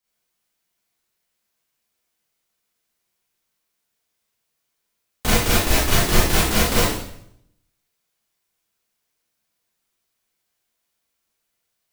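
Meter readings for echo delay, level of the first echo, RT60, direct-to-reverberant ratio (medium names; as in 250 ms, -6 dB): no echo, no echo, 0.70 s, -8.0 dB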